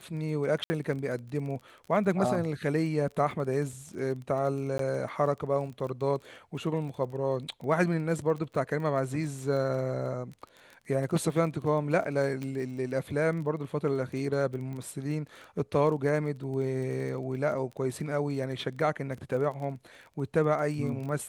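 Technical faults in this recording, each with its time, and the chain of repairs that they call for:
crackle 23 per s -37 dBFS
0.64–0.70 s: dropout 60 ms
4.78–4.79 s: dropout 13 ms
12.43 s: pop -24 dBFS
14.73 s: pop -30 dBFS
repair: de-click; interpolate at 0.64 s, 60 ms; interpolate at 4.78 s, 13 ms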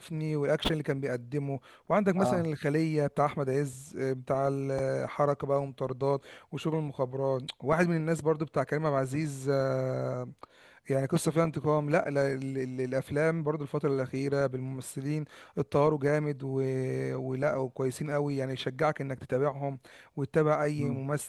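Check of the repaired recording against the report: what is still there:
nothing left

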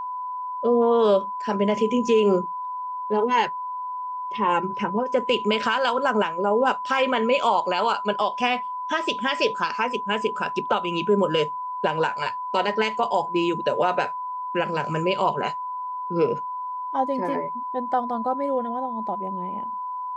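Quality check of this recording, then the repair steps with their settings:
whine 1 kHz -28 dBFS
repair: band-stop 1 kHz, Q 30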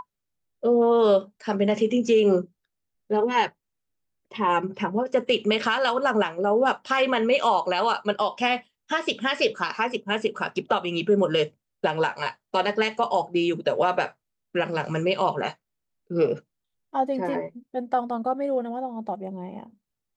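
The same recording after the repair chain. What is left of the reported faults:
nothing left

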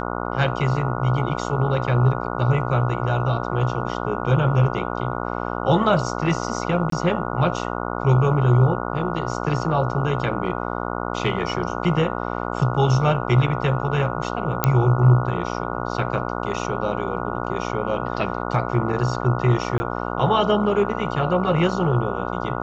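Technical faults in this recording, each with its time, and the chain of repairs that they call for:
buzz 60 Hz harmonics 24 -27 dBFS
6.90–6.92 s: dropout 23 ms
14.64 s: pop -2 dBFS
19.78–19.80 s: dropout 20 ms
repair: de-click; de-hum 60 Hz, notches 24; interpolate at 6.90 s, 23 ms; interpolate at 19.78 s, 20 ms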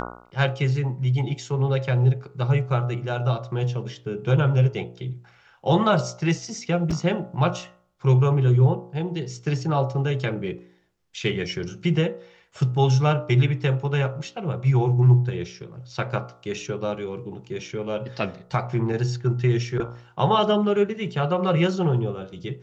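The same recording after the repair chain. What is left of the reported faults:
nothing left

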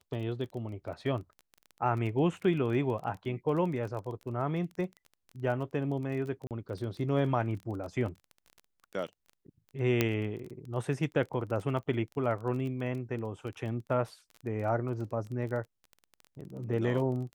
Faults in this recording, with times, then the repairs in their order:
crackle 21 per s -38 dBFS
6.47–6.51 s: dropout 38 ms
10.01 s: pop -11 dBFS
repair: de-click; interpolate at 6.47 s, 38 ms

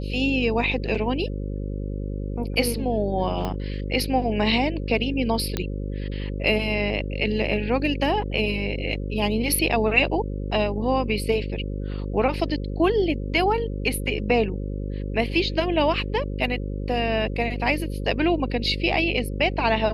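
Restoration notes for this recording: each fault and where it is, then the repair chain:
buzz 50 Hz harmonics 11 -29 dBFS
3.45 s: pop -15 dBFS
5.57 s: pop -10 dBFS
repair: de-click; de-hum 50 Hz, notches 11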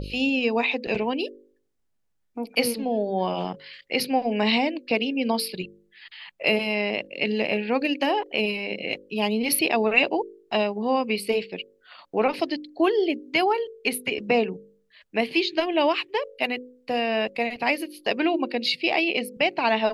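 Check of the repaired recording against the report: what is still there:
3.45 s: pop

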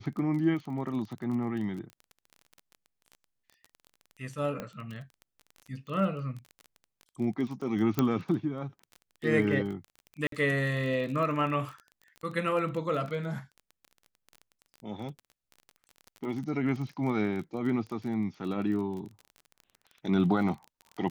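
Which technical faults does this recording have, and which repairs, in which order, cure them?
crackle 24 per s -37 dBFS
4.60 s: pop -22 dBFS
7.99 s: pop -12 dBFS
10.27–10.32 s: dropout 53 ms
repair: de-click; interpolate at 10.27 s, 53 ms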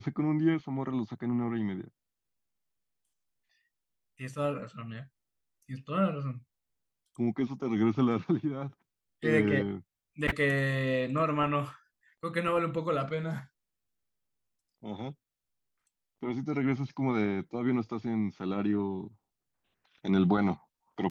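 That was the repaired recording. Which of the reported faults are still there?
4.60 s: pop

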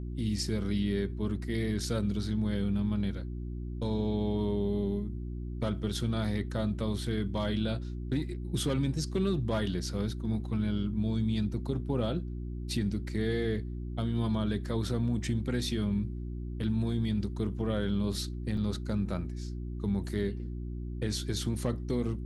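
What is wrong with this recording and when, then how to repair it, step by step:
hum 60 Hz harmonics 6 -37 dBFS
18.57 s: dropout 3.2 ms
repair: de-hum 60 Hz, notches 6; interpolate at 18.57 s, 3.2 ms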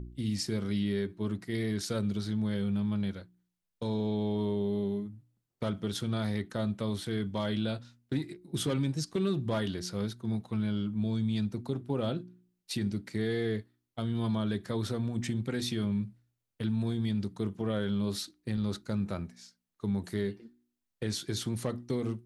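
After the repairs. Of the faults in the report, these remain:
nothing left

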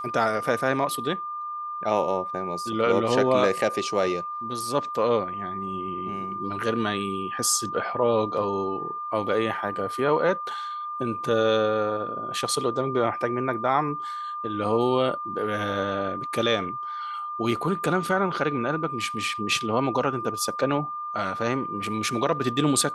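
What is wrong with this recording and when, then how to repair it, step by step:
whine 1.2 kHz -30 dBFS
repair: band-stop 1.2 kHz, Q 30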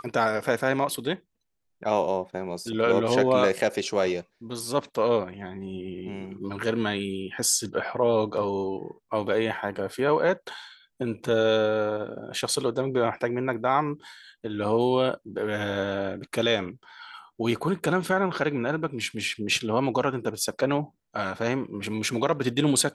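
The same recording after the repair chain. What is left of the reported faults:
nothing left

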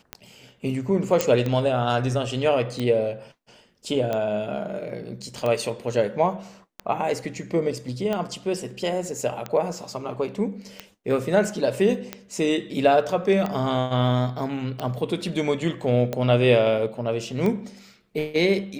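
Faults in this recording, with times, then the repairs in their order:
tick 45 rpm -14 dBFS
1.21 s: pop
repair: de-click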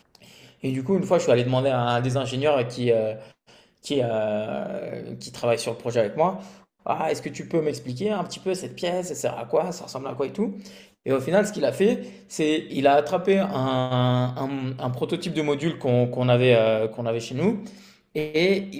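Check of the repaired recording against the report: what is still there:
nothing left

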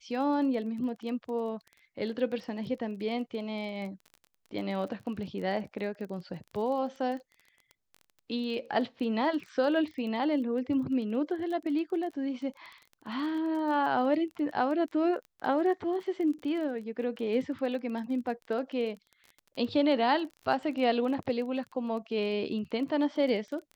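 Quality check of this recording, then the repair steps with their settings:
crackle 21 per s -38 dBFS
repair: de-click

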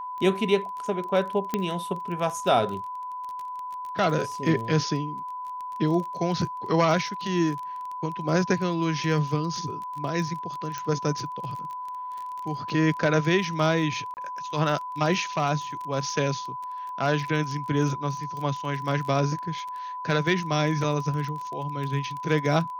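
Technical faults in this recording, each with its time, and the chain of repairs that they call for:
crackle 23 per s -32 dBFS
whine 1 kHz -32 dBFS
1.54 s: pop -11 dBFS
10.78 s: pop -17 dBFS
14.14–14.17 s: dropout 29 ms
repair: de-click; band-stop 1 kHz, Q 30; interpolate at 14.14 s, 29 ms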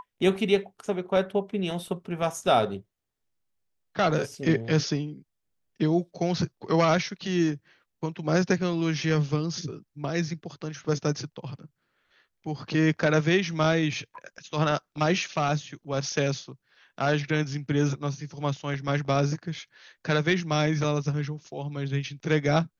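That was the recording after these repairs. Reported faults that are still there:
1.54 s: pop
10.78 s: pop

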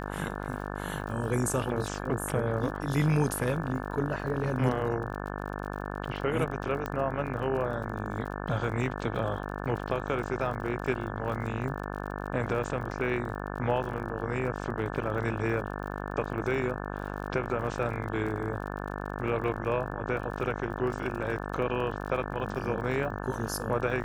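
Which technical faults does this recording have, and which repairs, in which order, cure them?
buzz 50 Hz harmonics 35 -36 dBFS
crackle 42 per s -38 dBFS
6.86 s: pop -19 dBFS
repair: de-click; de-hum 50 Hz, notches 35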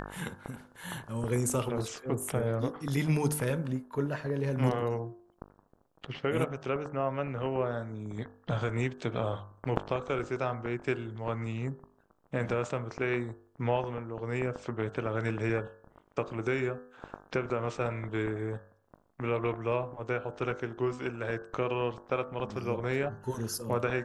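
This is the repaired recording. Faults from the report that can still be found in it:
nothing left

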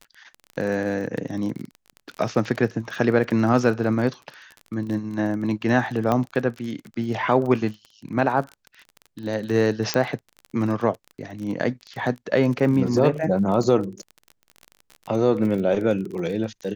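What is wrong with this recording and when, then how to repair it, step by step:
crackle 30 per s -30 dBFS
6.12 s: pop -10 dBFS
9.94 s: pop -7 dBFS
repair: de-click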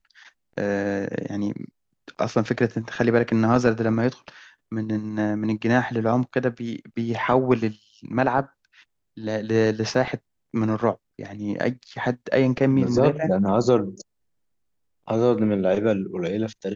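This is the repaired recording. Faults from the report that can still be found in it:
9.94 s: pop

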